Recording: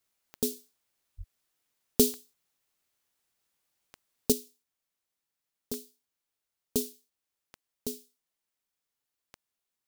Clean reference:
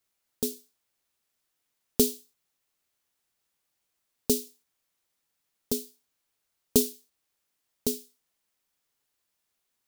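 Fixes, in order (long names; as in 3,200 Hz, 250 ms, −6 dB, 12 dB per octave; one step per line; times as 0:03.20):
click removal
0:01.17–0:01.29: high-pass filter 140 Hz 24 dB per octave
0:04.32: level correction +7.5 dB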